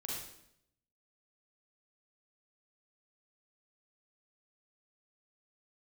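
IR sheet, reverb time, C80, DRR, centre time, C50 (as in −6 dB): 0.75 s, 3.0 dB, −4.5 dB, 67 ms, −1.0 dB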